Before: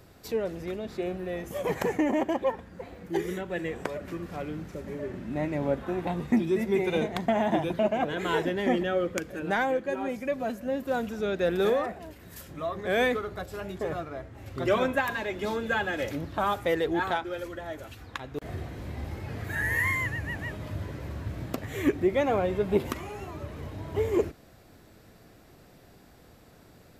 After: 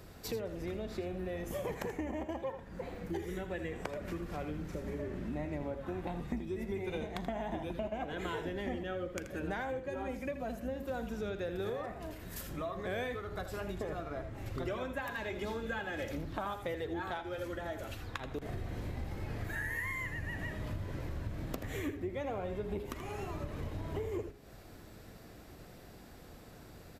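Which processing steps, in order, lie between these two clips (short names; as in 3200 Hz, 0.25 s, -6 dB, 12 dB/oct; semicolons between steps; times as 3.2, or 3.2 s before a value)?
octaver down 2 oct, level -4 dB; de-hum 137.4 Hz, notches 29; compressor, threshold -37 dBFS, peak gain reduction 18 dB; echo 81 ms -11 dB; gain +1 dB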